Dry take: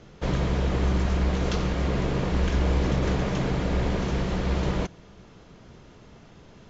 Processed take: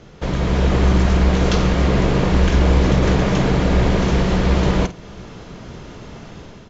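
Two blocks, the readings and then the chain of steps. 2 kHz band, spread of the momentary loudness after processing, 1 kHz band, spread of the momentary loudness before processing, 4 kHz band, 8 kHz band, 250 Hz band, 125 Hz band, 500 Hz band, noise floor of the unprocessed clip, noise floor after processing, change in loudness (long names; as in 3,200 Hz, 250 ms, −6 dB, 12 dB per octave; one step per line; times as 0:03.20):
+9.0 dB, 21 LU, +9.0 dB, 3 LU, +9.0 dB, can't be measured, +9.5 dB, +8.5 dB, +9.0 dB, −51 dBFS, −40 dBFS, +9.0 dB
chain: automatic gain control gain up to 8 dB
double-tracking delay 49 ms −14 dB
in parallel at −1 dB: downward compressor, threshold −29 dBFS, peak gain reduction 17 dB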